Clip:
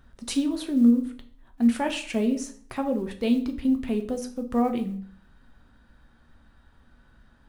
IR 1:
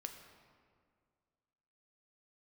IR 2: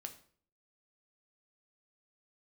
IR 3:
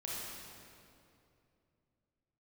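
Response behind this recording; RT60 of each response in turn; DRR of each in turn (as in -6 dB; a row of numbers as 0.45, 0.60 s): 2; 2.0, 0.50, 2.7 s; 4.5, 5.5, -6.0 dB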